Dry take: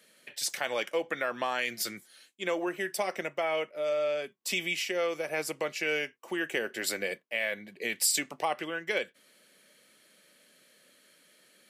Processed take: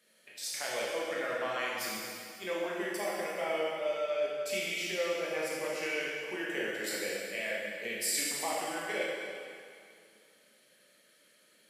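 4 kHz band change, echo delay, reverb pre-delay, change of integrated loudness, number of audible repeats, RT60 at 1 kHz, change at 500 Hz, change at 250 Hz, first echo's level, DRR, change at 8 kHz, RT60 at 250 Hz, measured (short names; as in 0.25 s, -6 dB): -2.5 dB, none, 7 ms, -2.5 dB, none, 2.4 s, -1.5 dB, -2.5 dB, none, -5.5 dB, -3.0 dB, 2.3 s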